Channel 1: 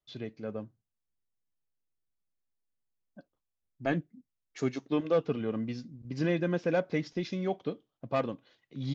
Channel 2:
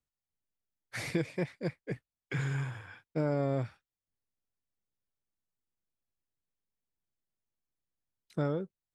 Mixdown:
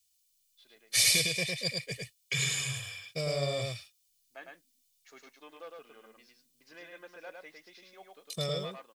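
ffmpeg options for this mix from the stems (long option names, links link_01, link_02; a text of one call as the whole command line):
ffmpeg -i stem1.wav -i stem2.wav -filter_complex "[0:a]highpass=840,adelay=500,volume=-12dB,asplit=2[link_01][link_02];[link_02]volume=-3dB[link_03];[1:a]aecho=1:1:1.7:0.79,aexciter=amount=12.1:drive=6.2:freq=2400,volume=-6dB,asplit=2[link_04][link_05];[link_05]volume=-3dB[link_06];[link_03][link_06]amix=inputs=2:normalize=0,aecho=0:1:106:1[link_07];[link_01][link_04][link_07]amix=inputs=3:normalize=0" out.wav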